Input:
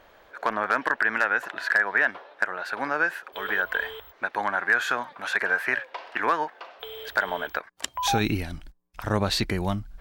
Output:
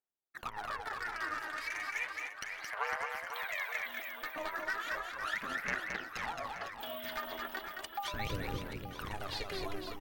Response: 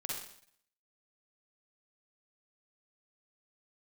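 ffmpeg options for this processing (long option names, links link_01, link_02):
-filter_complex "[0:a]aemphasis=mode=production:type=50fm,agate=range=-48dB:threshold=-41dB:ratio=16:detection=peak,acrossover=split=3900[link_01][link_02];[link_02]acompressor=threshold=-45dB:ratio=4:attack=1:release=60[link_03];[link_01][link_03]amix=inputs=2:normalize=0,lowshelf=frequency=130:gain=-11,acompressor=threshold=-33dB:ratio=3,aeval=exprs='val(0)*sin(2*PI*200*n/s)':channel_layout=same,asettb=1/sr,asplit=3[link_04][link_05][link_06];[link_04]atrim=end=1.574[link_07];[link_05]atrim=start=1.57:end=3.86,asetpts=PTS-STARTPTS,afade=type=in:duration=0.004:curve=qsin,afade=type=out:start_time=2.286:duration=0.004:curve=qsin,afreqshift=400[link_08];[link_06]atrim=start=3.856[link_09];[link_07][link_08]acrossfade=duration=0.004:curve1=hsin:curve2=qsin[link_10];[link_10][link_09]acrossfade=duration=0.004:curve1=qsin:curve2=hsin,aeval=exprs='0.0501*(abs(mod(val(0)/0.0501+3,4)-2)-1)':channel_layout=same,aphaser=in_gain=1:out_gain=1:delay=3.3:decay=0.71:speed=0.35:type=sinusoidal,aecho=1:1:220|506|877.8|1361|1989:0.631|0.398|0.251|0.158|0.1,volume=-5.5dB"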